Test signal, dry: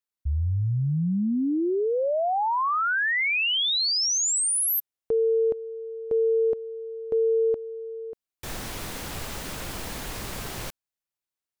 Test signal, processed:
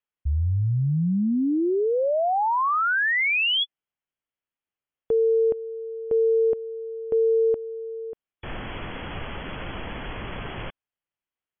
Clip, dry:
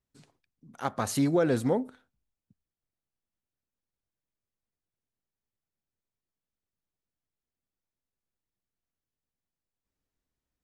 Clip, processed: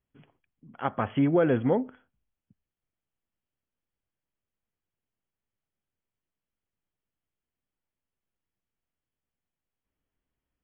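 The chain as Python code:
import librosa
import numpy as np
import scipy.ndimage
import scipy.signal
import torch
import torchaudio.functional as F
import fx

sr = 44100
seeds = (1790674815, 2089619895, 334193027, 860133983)

y = fx.brickwall_lowpass(x, sr, high_hz=3400.0)
y = F.gain(torch.from_numpy(y), 2.0).numpy()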